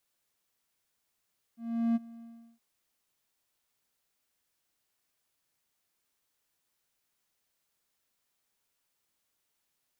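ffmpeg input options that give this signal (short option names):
-f lavfi -i "aevalsrc='0.0891*(1-4*abs(mod(231*t+0.25,1)-0.5))':d=1.019:s=44100,afade=t=in:d=0.385,afade=t=out:st=0.385:d=0.027:silence=0.0794,afade=t=out:st=0.66:d=0.359"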